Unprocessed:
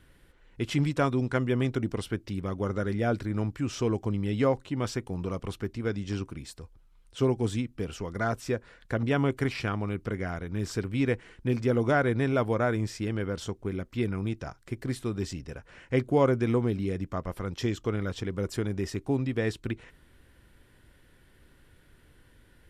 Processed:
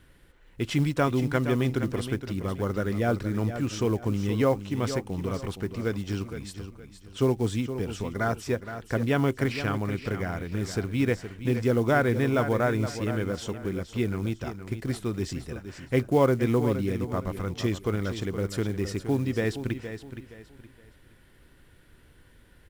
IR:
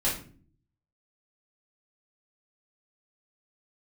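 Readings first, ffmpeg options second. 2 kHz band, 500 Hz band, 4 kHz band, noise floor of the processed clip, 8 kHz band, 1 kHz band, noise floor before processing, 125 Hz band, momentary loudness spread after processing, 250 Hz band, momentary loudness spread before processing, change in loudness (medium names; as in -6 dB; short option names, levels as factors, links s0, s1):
+2.0 dB, +2.0 dB, +2.0 dB, -56 dBFS, +2.5 dB, +2.0 dB, -59 dBFS, +2.0 dB, 9 LU, +2.0 dB, 9 LU, +2.0 dB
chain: -af "acrusher=bits=7:mode=log:mix=0:aa=0.000001,aecho=1:1:468|936|1404:0.299|0.0925|0.0287,volume=1.19"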